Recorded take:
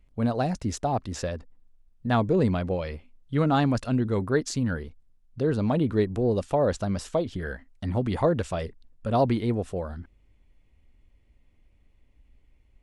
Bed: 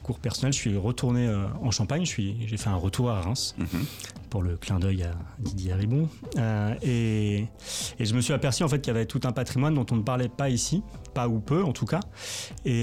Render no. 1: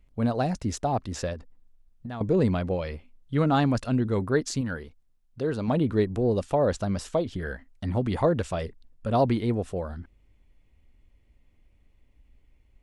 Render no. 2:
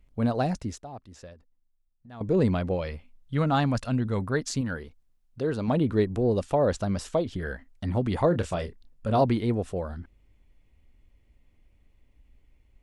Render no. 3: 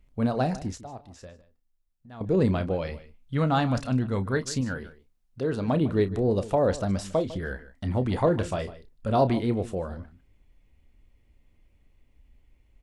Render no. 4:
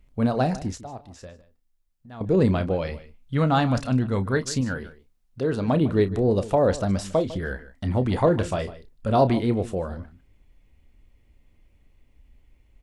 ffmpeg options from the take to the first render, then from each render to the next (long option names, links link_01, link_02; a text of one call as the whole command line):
ffmpeg -i in.wav -filter_complex "[0:a]asettb=1/sr,asplit=3[link_01][link_02][link_03];[link_01]atrim=end=1.334[link_04];[link_02]atrim=start=1.33:end=2.21,asetpts=PTS-STARTPTS,afade=type=in:duration=0.004:curve=qsin,afade=type=out:start_time=0.876:duration=0.004:curve=qsin,acompressor=threshold=-33dB:ratio=6:attack=3.2:release=140:knee=1:detection=peak[link_05];[link_03]atrim=start=2.206[link_06];[link_04][link_05]acrossfade=duration=0.004:curve1=hsin:curve2=qsin[link_07];[link_07][link_06]acrossfade=duration=0.004:curve1=qsin:curve2=hsin,asettb=1/sr,asplit=3[link_08][link_09][link_10];[link_08]atrim=end=4.614[link_11];[link_09]atrim=start=4.61:end=5.68,asetpts=PTS-STARTPTS,afade=type=in:duration=0.004:curve=qsin,afade=type=out:start_time=1.066:duration=0.004:curve=qsin,lowshelf=frequency=320:gain=-6.5[link_12];[link_10]atrim=start=5.676[link_13];[link_11][link_12]acrossfade=duration=0.004:curve1=hsin:curve2=qsin[link_14];[link_14][link_13]acrossfade=duration=0.004:curve1=qsin:curve2=hsin" out.wav
ffmpeg -i in.wav -filter_complex "[0:a]asettb=1/sr,asplit=3[link_01][link_02][link_03];[link_01]atrim=end=2.904[link_04];[link_02]atrim=start=2.9:end=4.54,asetpts=PTS-STARTPTS,afade=type=in:duration=0.004:curve=qsin,afade=type=out:start_time=1.636:duration=0.004:curve=qsin,equalizer=frequency=360:width=1.8:gain=-6.5[link_05];[link_03]atrim=start=4.536[link_06];[link_04][link_05]acrossfade=duration=0.004:curve1=hsin:curve2=qsin[link_07];[link_07][link_06]acrossfade=duration=0.004:curve1=qsin:curve2=hsin,asettb=1/sr,asplit=3[link_08][link_09][link_10];[link_08]atrim=end=8.284[link_11];[link_09]atrim=start=8.28:end=9.24,asetpts=PTS-STARTPTS,afade=type=in:duration=0.004:curve=qsin,afade=type=out:start_time=0.956:duration=0.004:curve=qsin,asplit=2[link_12][link_13];[link_13]adelay=28,volume=-10dB[link_14];[link_12][link_14]amix=inputs=2:normalize=0,atrim=end_sample=42336[link_15];[link_10]atrim=start=9.236[link_16];[link_11][link_15]acrossfade=duration=0.004:curve1=hsin:curve2=qsin[link_17];[link_17][link_16]acrossfade=duration=0.004:curve1=qsin:curve2=hsin,asplit=3[link_18][link_19][link_20];[link_18]atrim=end=0.84,asetpts=PTS-STARTPTS,afade=type=out:start_time=0.53:duration=0.31:silence=0.177828[link_21];[link_19]atrim=start=0.84:end=2.06,asetpts=PTS-STARTPTS,volume=-15dB[link_22];[link_20]atrim=start=2.06,asetpts=PTS-STARTPTS,afade=type=in:duration=0.31:silence=0.177828[link_23];[link_21][link_22][link_23]concat=n=3:v=0:a=1" out.wav
ffmpeg -i in.wav -filter_complex "[0:a]asplit=2[link_01][link_02];[link_02]adelay=31,volume=-12dB[link_03];[link_01][link_03]amix=inputs=2:normalize=0,asplit=2[link_04][link_05];[link_05]adelay=151.6,volume=-16dB,highshelf=frequency=4000:gain=-3.41[link_06];[link_04][link_06]amix=inputs=2:normalize=0" out.wav
ffmpeg -i in.wav -af "volume=3dB" out.wav